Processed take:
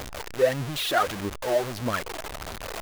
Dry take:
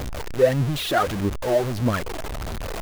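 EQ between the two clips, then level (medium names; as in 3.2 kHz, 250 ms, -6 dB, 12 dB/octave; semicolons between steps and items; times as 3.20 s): bass shelf 380 Hz -11 dB; 0.0 dB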